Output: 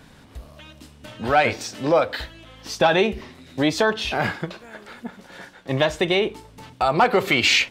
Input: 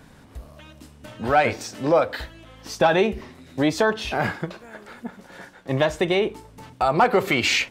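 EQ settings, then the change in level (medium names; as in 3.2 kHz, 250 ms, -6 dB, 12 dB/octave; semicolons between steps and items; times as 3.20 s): peaking EQ 3.5 kHz +5 dB 1.4 oct; 0.0 dB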